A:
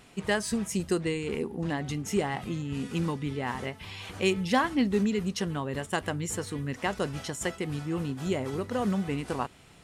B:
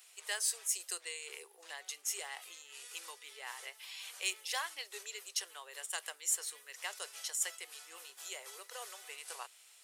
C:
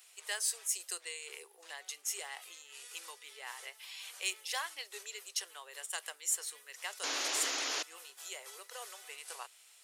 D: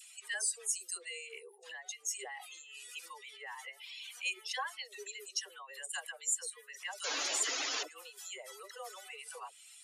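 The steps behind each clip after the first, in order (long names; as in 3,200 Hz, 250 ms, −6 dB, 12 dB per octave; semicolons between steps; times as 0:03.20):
Butterworth high-pass 410 Hz 48 dB per octave; first difference; level +3 dB
sound drawn into the spectrogram noise, 0:07.03–0:07.83, 260–7,200 Hz −36 dBFS
expanding power law on the bin magnitudes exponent 2.1; all-pass dispersion lows, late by 61 ms, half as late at 830 Hz; one half of a high-frequency compander encoder only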